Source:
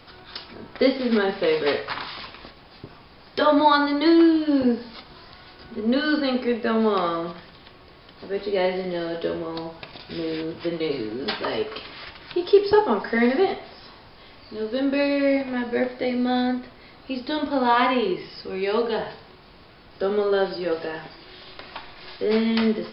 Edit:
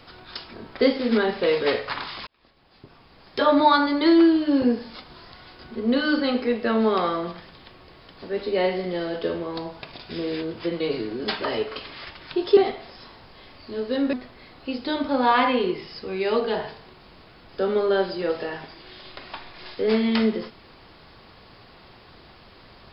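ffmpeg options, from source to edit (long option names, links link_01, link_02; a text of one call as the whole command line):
ffmpeg -i in.wav -filter_complex "[0:a]asplit=4[link_01][link_02][link_03][link_04];[link_01]atrim=end=2.27,asetpts=PTS-STARTPTS,afade=type=out:start_time=2.266:duration=0.004:curve=hsin[link_05];[link_02]atrim=start=2.27:end=12.572,asetpts=PTS-STARTPTS,afade=type=in:duration=1.28[link_06];[link_03]atrim=start=13.398:end=14.962[link_07];[link_04]atrim=start=16.548[link_08];[link_05][link_06]concat=n=2:v=0:a=1[link_09];[link_09][link_07]acrossfade=duration=0.004:curve1=hsin:curve2=hsin[link_10];[link_10][link_08]acrossfade=duration=0.004:curve1=hsin:curve2=hsin" out.wav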